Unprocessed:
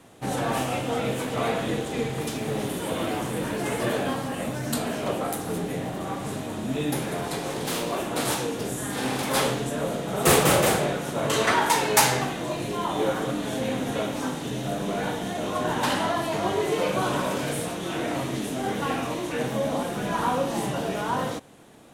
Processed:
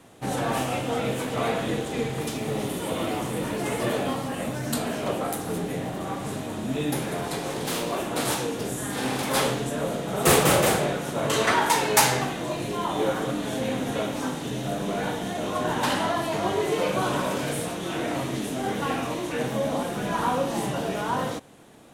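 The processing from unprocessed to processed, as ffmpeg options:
ffmpeg -i in.wav -filter_complex "[0:a]asettb=1/sr,asplit=3[link_01][link_02][link_03];[link_01]atrim=end=2.314[link_04];[link_02]atrim=start=2.31:end=4.29,asetpts=PTS-STARTPTS,afade=type=in:duration=0.004:curve=qsin,afade=type=out:start_time=1.976:duration=0.004:curve=qsin,bandreject=frequency=1600:width=12[link_05];[link_03]atrim=start=4.286[link_06];[link_04][link_05]acrossfade=duration=0.004:curve1=hsin:curve2=qsin[link_07];[link_07][link_06]acrossfade=duration=0.004:curve1=qsin:curve2=hsin" out.wav

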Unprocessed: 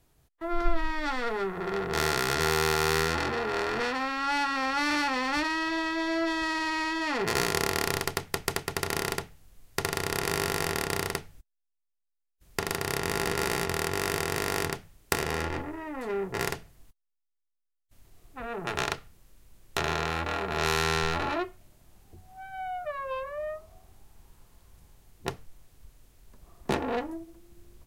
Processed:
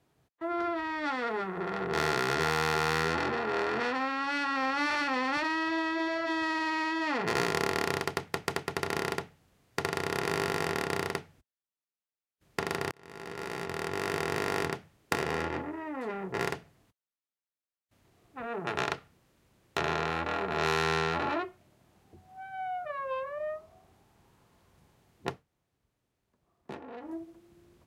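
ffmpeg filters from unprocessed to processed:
ffmpeg -i in.wav -filter_complex "[0:a]asplit=4[link_01][link_02][link_03][link_04];[link_01]atrim=end=12.91,asetpts=PTS-STARTPTS,afade=type=out:start_time=12.906:duration=0.004:curve=hsin[link_05];[link_02]atrim=start=12.91:end=25.43,asetpts=PTS-STARTPTS,afade=type=in:duration=1.37,afade=type=out:start_time=12.38:duration=0.14:silence=0.199526[link_06];[link_03]atrim=start=25.43:end=27,asetpts=PTS-STARTPTS,volume=-14dB[link_07];[link_04]atrim=start=27,asetpts=PTS-STARTPTS,afade=type=in:duration=0.14:silence=0.199526[link_08];[link_05][link_06][link_07][link_08]concat=n=4:v=0:a=1,lowpass=frequency=2900:poles=1,afftfilt=real='re*lt(hypot(re,im),0.316)':imag='im*lt(hypot(re,im),0.316)':win_size=1024:overlap=0.75,highpass=120" out.wav

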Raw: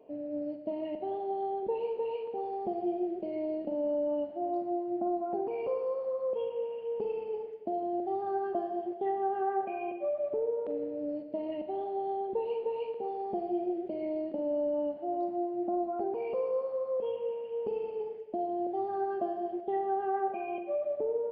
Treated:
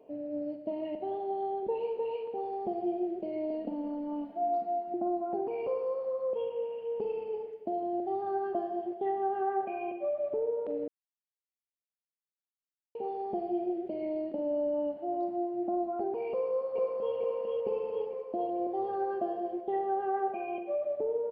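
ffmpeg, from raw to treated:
ffmpeg -i in.wav -filter_complex "[0:a]asettb=1/sr,asplit=3[link_01][link_02][link_03];[link_01]atrim=end=3.504[link_04];[link_02]atrim=start=3.5:end=4.94,asetpts=PTS-STARTPTS,afade=type=in:duration=0.004:curve=qsin,afade=type=out:start_time=1.436:duration=0.004:curve=qsin,aecho=1:1:4.3:0.85,atrim=end_sample=63504[link_05];[link_03]atrim=start=4.936[link_06];[link_04][link_05]acrossfade=duration=0.004:curve1=hsin:curve2=qsin[link_07];[link_07][link_06]acrossfade=duration=0.004:curve1=qsin:curve2=hsin,asplit=2[link_08][link_09];[link_09]afade=type=in:start_time=16.3:duration=0.01,afade=type=out:start_time=17.15:duration=0.01,aecho=0:1:450|900|1350|1800|2250|2700|3150|3600|4050|4500|4950:0.794328|0.516313|0.335604|0.218142|0.141793|0.0921652|0.0599074|0.0389398|0.0253109|0.0164521|0.0106938[link_10];[link_08][link_10]amix=inputs=2:normalize=0,asplit=3[link_11][link_12][link_13];[link_11]atrim=end=10.88,asetpts=PTS-STARTPTS,afade=type=out:start_time=10.876:duration=0.004:curve=hsin[link_14];[link_12]atrim=start=10.88:end=12.95,asetpts=PTS-STARTPTS,volume=0[link_15];[link_13]atrim=start=12.95,asetpts=PTS-STARTPTS,afade=type=in:duration=0.004:curve=hsin[link_16];[link_14][link_15][link_16]concat=n=3:v=0:a=1" out.wav

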